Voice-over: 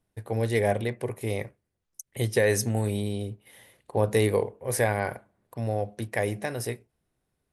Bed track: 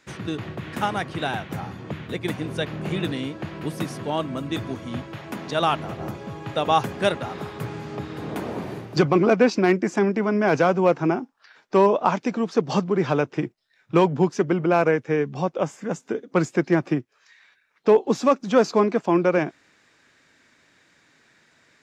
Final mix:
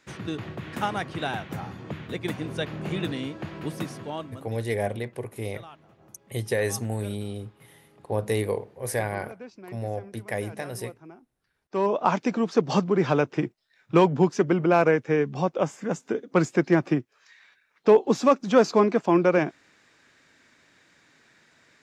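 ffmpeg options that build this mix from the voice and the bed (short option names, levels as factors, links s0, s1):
-filter_complex "[0:a]adelay=4150,volume=0.708[s0];[1:a]volume=11.9,afade=t=out:st=3.73:d=0.85:silence=0.0794328,afade=t=in:st=11.6:d=0.55:silence=0.0595662[s1];[s0][s1]amix=inputs=2:normalize=0"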